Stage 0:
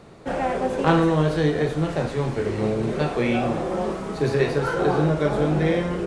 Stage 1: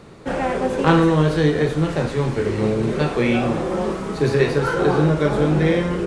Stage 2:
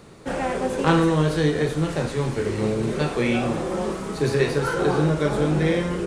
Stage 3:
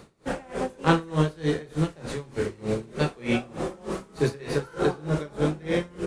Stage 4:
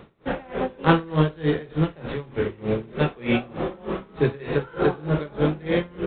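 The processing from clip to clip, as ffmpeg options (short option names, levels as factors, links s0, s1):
-af "equalizer=f=690:t=o:w=0.48:g=-5,volume=1.58"
-af "highshelf=f=6700:g=10.5,volume=0.668"
-af "aeval=exprs='val(0)*pow(10,-24*(0.5-0.5*cos(2*PI*3.3*n/s))/20)':c=same"
-af "volume=1.41" -ar 8000 -c:a adpcm_g726 -b:a 32k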